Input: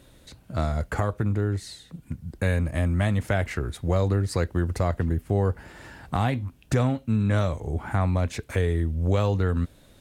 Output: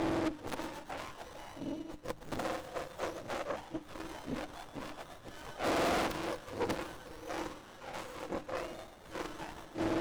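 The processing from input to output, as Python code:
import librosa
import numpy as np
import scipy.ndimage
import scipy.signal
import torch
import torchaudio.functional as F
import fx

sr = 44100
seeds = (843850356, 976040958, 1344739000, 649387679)

y = fx.octave_mirror(x, sr, pivot_hz=1100.0)
y = scipy.signal.sosfilt(scipy.signal.butter(4, 8300.0, 'lowpass', fs=sr, output='sos'), y)
y = fx.gate_flip(y, sr, shuts_db=-35.0, range_db=-30)
y = fx.peak_eq(y, sr, hz=1600.0, db=12.5, octaves=2.7)
y = fx.notch(y, sr, hz=1900.0, q=7.0)
y = fx.small_body(y, sr, hz=(320.0, 500.0), ring_ms=30, db=18)
y = fx.tube_stage(y, sr, drive_db=46.0, bias=0.75)
y = fx.peak_eq(y, sr, hz=150.0, db=-4.0, octaves=0.77)
y = fx.hum_notches(y, sr, base_hz=50, count=6)
y = fx.echo_wet_highpass(y, sr, ms=124, feedback_pct=68, hz=1800.0, wet_db=-11.0)
y = fx.running_max(y, sr, window=17)
y = F.gain(torch.from_numpy(y), 18.0).numpy()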